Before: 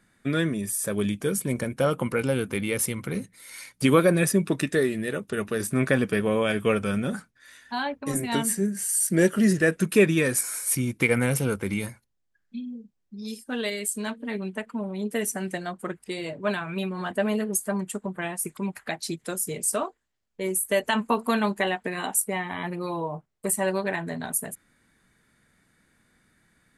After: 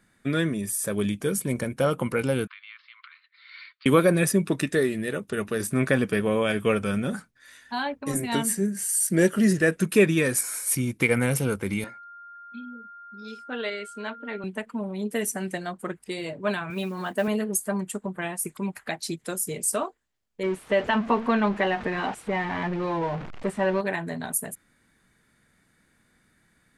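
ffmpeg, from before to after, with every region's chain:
ffmpeg -i in.wav -filter_complex "[0:a]asettb=1/sr,asplit=3[link_01][link_02][link_03];[link_01]atrim=end=2.474[link_04];[link_02]atrim=start=2.47:end=3.86,asetpts=PTS-STARTPTS,afade=type=in:duration=0.004:curve=qsin,afade=type=out:start_time=1.386:duration=0.004:curve=qsin,acompressor=threshold=-34dB:ratio=10:attack=3.2:release=140:knee=1:detection=peak,asuperpass=centerf=2200:order=20:qfactor=0.63[link_05];[link_03]atrim=start=3.856[link_06];[link_04][link_05]acrossfade=duration=0.004:curve1=hsin:curve2=qsin[link_07];[link_07][link_06]acrossfade=duration=0.004:curve1=qsin:curve2=hsin,asettb=1/sr,asplit=3[link_08][link_09][link_10];[link_08]atrim=end=11.844[link_11];[link_09]atrim=start=11.84:end=14.44,asetpts=PTS-STARTPTS,afade=type=in:duration=0.004:curve=qsin,afade=type=out:start_time=2.596:duration=0.004:curve=qsin,highpass=310,lowpass=3300,aeval=exprs='val(0)+0.00794*sin(2*PI*1400*n/s)':channel_layout=same[link_12];[link_10]atrim=start=14.436[link_13];[link_11][link_12]acrossfade=duration=0.004:curve1=hsin:curve2=qsin[link_14];[link_14][link_13]acrossfade=duration=0.004:curve1=qsin:curve2=hsin,asettb=1/sr,asplit=3[link_15][link_16][link_17];[link_15]atrim=end=16.704[link_18];[link_16]atrim=start=16.7:end=17.28,asetpts=PTS-STARTPTS,afade=type=in:duration=0.004:curve=qsin,afade=type=out:start_time=0.576:duration=0.004:curve=qsin,acrusher=bits=7:mode=log:mix=0:aa=0.000001,highpass=140[link_19];[link_17]atrim=start=17.276[link_20];[link_18][link_19]acrossfade=duration=0.004:curve1=hsin:curve2=qsin[link_21];[link_21][link_20]acrossfade=duration=0.004:curve1=qsin:curve2=hsin,asettb=1/sr,asplit=3[link_22][link_23][link_24];[link_22]atrim=end=20.434[link_25];[link_23]atrim=start=20.43:end=23.81,asetpts=PTS-STARTPTS,afade=type=in:duration=0.004:curve=qsin,afade=type=out:start_time=3.376:duration=0.004:curve=qsin,aeval=exprs='val(0)+0.5*0.0316*sgn(val(0))':channel_layout=same,lowpass=2600[link_26];[link_24]atrim=start=23.806[link_27];[link_25][link_26]acrossfade=duration=0.004:curve1=hsin:curve2=qsin[link_28];[link_28][link_27]acrossfade=duration=0.004:curve1=qsin:curve2=hsin" out.wav

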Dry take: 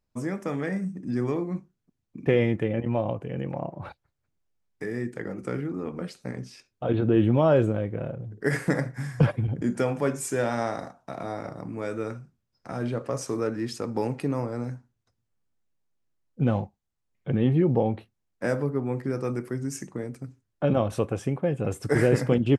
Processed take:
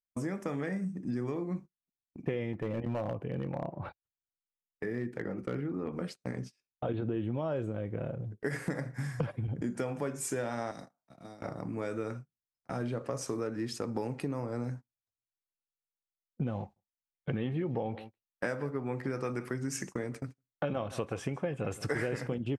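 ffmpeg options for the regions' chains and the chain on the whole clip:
ffmpeg -i in.wav -filter_complex "[0:a]asettb=1/sr,asplit=3[link_01][link_02][link_03];[link_01]atrim=end=2.534[link_04];[link_02]atrim=start=2.53:end=5.93,asetpts=PTS-STARTPTS,afade=type=in:duration=0.004:curve=qsin,afade=type=out:start_time=3.396:duration=0.004:curve=qsin,equalizer=frequency=8100:width=0.87:gain=-12,asoftclip=type=hard:threshold=-22dB[link_05];[link_03]atrim=start=5.926[link_06];[link_04][link_05]acrossfade=duration=0.004:curve1=hsin:curve2=qsin[link_07];[link_07][link_06]acrossfade=duration=0.004:curve1=qsin:curve2=hsin,asettb=1/sr,asplit=3[link_08][link_09][link_10];[link_08]atrim=end=10.714[link_11];[link_09]atrim=start=10.71:end=11.42,asetpts=PTS-STARTPTS,afade=type=in:duration=0.004:curve=qsin,afade=type=out:start_time=0.706:duration=0.004:curve=qsin,equalizer=frequency=91:width=3:gain=-15,acrossover=split=240|3000[link_12][link_13][link_14];[link_13]acompressor=threshold=-39dB:ratio=10:attack=3.2:release=140:knee=2.83:detection=peak[link_15];[link_12][link_15][link_14]amix=inputs=3:normalize=0[link_16];[link_10]atrim=start=11.416[link_17];[link_11][link_16]acrossfade=duration=0.004:curve1=hsin:curve2=qsin[link_18];[link_18][link_17]acrossfade=duration=0.004:curve1=qsin:curve2=hsin,asettb=1/sr,asplit=3[link_19][link_20][link_21];[link_19]atrim=end=16.604[link_22];[link_20]atrim=start=16.6:end=22.27,asetpts=PTS-STARTPTS,afade=type=in:duration=0.004:curve=qsin,afade=type=out:start_time=5.666:duration=0.004:curve=qsin,equalizer=frequency=2100:width=0.35:gain=8,aecho=1:1:161:0.1,atrim=end_sample=250047[link_23];[link_21]atrim=start=22.266[link_24];[link_22][link_23]acrossfade=duration=0.004:curve1=hsin:curve2=qsin[link_25];[link_25][link_24]acrossfade=duration=0.004:curve1=qsin:curve2=hsin,agate=range=-27dB:threshold=-39dB:ratio=16:detection=peak,acompressor=threshold=-29dB:ratio=6,volume=-1.5dB" out.wav

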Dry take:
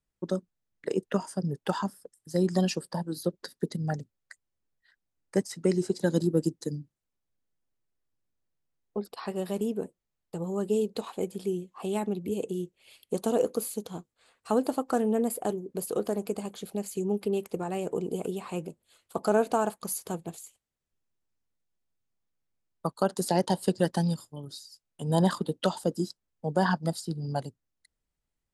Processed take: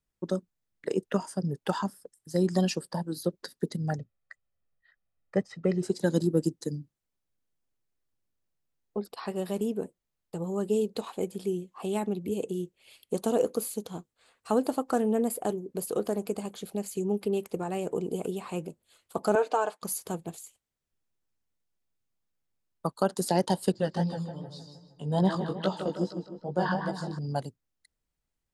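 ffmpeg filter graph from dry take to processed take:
ffmpeg -i in.wav -filter_complex "[0:a]asettb=1/sr,asplit=3[link_01][link_02][link_03];[link_01]atrim=end=3.984[link_04];[link_02]atrim=start=3.98:end=5.83,asetpts=PTS-STARTPTS,afade=type=in:duration=0.004:curve=qsin,afade=type=out:start_time=1.846:duration=0.004:curve=qsin,lowpass=2700,aecho=1:1:1.6:0.49,atrim=end_sample=81585[link_05];[link_03]atrim=start=5.826[link_06];[link_04][link_05]acrossfade=duration=0.004:curve1=hsin:curve2=qsin[link_07];[link_07][link_06]acrossfade=duration=0.004:curve1=qsin:curve2=hsin,asettb=1/sr,asplit=3[link_08][link_09][link_10];[link_08]atrim=end=19.354[link_11];[link_09]atrim=start=19.35:end=19.82,asetpts=PTS-STARTPTS,afade=type=in:duration=0.004:curve=qsin,afade=type=out:start_time=0.466:duration=0.004:curve=qsin,highpass=450,lowpass=5500,aecho=1:1:6.6:0.55,atrim=end_sample=20727[link_12];[link_10]atrim=start=19.816[link_13];[link_11][link_12]acrossfade=duration=0.004:curve1=hsin:curve2=qsin[link_14];[link_14][link_13]acrossfade=duration=0.004:curve1=qsin:curve2=hsin,asettb=1/sr,asplit=3[link_15][link_16][link_17];[link_15]atrim=end=23.724[link_18];[link_16]atrim=start=23.72:end=27.19,asetpts=PTS-STARTPTS,afade=type=in:duration=0.004:curve=qsin,afade=type=out:start_time=3.466:duration=0.004:curve=qsin,lowpass=5300,asplit=2[link_19][link_20];[link_20]adelay=155,lowpass=frequency=2900:poles=1,volume=-6dB,asplit=2[link_21][link_22];[link_22]adelay=155,lowpass=frequency=2900:poles=1,volume=0.53,asplit=2[link_23][link_24];[link_24]adelay=155,lowpass=frequency=2900:poles=1,volume=0.53,asplit=2[link_25][link_26];[link_26]adelay=155,lowpass=frequency=2900:poles=1,volume=0.53,asplit=2[link_27][link_28];[link_28]adelay=155,lowpass=frequency=2900:poles=1,volume=0.53,asplit=2[link_29][link_30];[link_30]adelay=155,lowpass=frequency=2900:poles=1,volume=0.53,asplit=2[link_31][link_32];[link_32]adelay=155,lowpass=frequency=2900:poles=1,volume=0.53[link_33];[link_19][link_21][link_23][link_25][link_27][link_29][link_31][link_33]amix=inputs=8:normalize=0,atrim=end_sample=153027,flanger=delay=15:depth=5.6:speed=2.5[link_34];[link_17]atrim=start=27.186[link_35];[link_18][link_34]acrossfade=duration=0.004:curve1=hsin:curve2=qsin[link_36];[link_36][link_35]acrossfade=duration=0.004:curve1=qsin:curve2=hsin" out.wav

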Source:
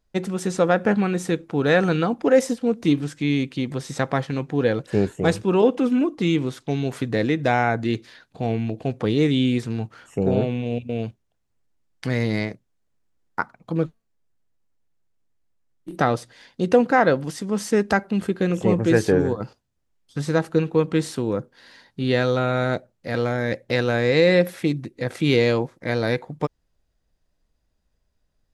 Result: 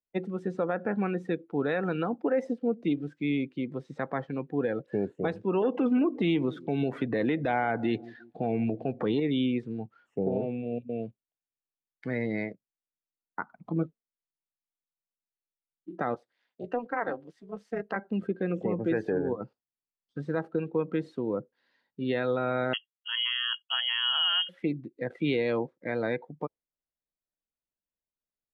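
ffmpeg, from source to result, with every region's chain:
ffmpeg -i in.wav -filter_complex "[0:a]asettb=1/sr,asplit=3[link_01][link_02][link_03];[link_01]atrim=end=5.624[link_04];[link_02]atrim=start=5.62:end=9.2,asetpts=PTS-STARTPTS,afade=type=in:duration=0.004:curve=qsin,afade=type=out:start_time=3.576:duration=0.004:curve=qsin,asplit=2[link_05][link_06];[link_06]adelay=175,lowpass=frequency=1100:poles=1,volume=-23dB,asplit=2[link_07][link_08];[link_08]adelay=175,lowpass=frequency=1100:poles=1,volume=0.53,asplit=2[link_09][link_10];[link_10]adelay=175,lowpass=frequency=1100:poles=1,volume=0.53,asplit=2[link_11][link_12];[link_12]adelay=175,lowpass=frequency=1100:poles=1,volume=0.53[link_13];[link_05][link_07][link_09][link_11][link_13]amix=inputs=5:normalize=0,atrim=end_sample=157878,acontrast=75,highshelf=frequency=9200:gain=4[link_14];[link_03]atrim=start=9.196[link_15];[link_04][link_14]acrossfade=duration=0.004:curve1=hsin:curve2=qsin[link_16];[link_16][link_15]acrossfade=duration=0.004:curve1=qsin:curve2=hsin,asettb=1/sr,asplit=3[link_17][link_18][link_19];[link_17]atrim=end=13.394[link_20];[link_18]atrim=start=13.39:end=13.83,asetpts=PTS-STARTPTS,afade=type=in:duration=0.004:curve=qsin,afade=type=out:start_time=0.436:duration=0.004:curve=qsin,lowshelf=frequency=280:gain=5.5,bandreject=frequency=500:width=8.7,acompressor=mode=upward:threshold=-27dB:ratio=2.5:attack=3.2:release=140:knee=2.83:detection=peak[link_21];[link_19]atrim=start=13.826[link_22];[link_20][link_21]acrossfade=duration=0.004:curve1=hsin:curve2=qsin[link_23];[link_23][link_22]acrossfade=duration=0.004:curve1=qsin:curve2=hsin,asettb=1/sr,asplit=3[link_24][link_25][link_26];[link_24]atrim=end=16.144[link_27];[link_25]atrim=start=16.14:end=17.96,asetpts=PTS-STARTPTS,afade=type=in:duration=0.004:curve=qsin,afade=type=out:start_time=1.816:duration=0.004:curve=qsin,lowshelf=frequency=390:gain=-8.5,tremolo=f=240:d=0.889[link_28];[link_26]atrim=start=17.956[link_29];[link_27][link_28]acrossfade=duration=0.004:curve1=hsin:curve2=qsin[link_30];[link_30][link_29]acrossfade=duration=0.004:curve1=qsin:curve2=hsin,asettb=1/sr,asplit=3[link_31][link_32][link_33];[link_31]atrim=end=22.734[link_34];[link_32]atrim=start=22.73:end=24.49,asetpts=PTS-STARTPTS,afade=type=in:duration=0.004:curve=qsin,afade=type=out:start_time=1.756:duration=0.004:curve=qsin,agate=range=-33dB:threshold=-40dB:ratio=3:release=100:detection=peak,lowpass=frequency=2900:width_type=q:width=0.5098,lowpass=frequency=2900:width_type=q:width=0.6013,lowpass=frequency=2900:width_type=q:width=0.9,lowpass=frequency=2900:width_type=q:width=2.563,afreqshift=-3400[link_35];[link_33]atrim=start=24.486[link_36];[link_34][link_35]acrossfade=duration=0.004:curve1=hsin:curve2=qsin[link_37];[link_37][link_36]acrossfade=duration=0.004:curve1=qsin:curve2=hsin,acrossover=split=160 4300:gain=0.224 1 0.178[link_38][link_39][link_40];[link_38][link_39][link_40]amix=inputs=3:normalize=0,afftdn=noise_reduction=17:noise_floor=-33,alimiter=limit=-13dB:level=0:latency=1:release=105,volume=-5.5dB" out.wav

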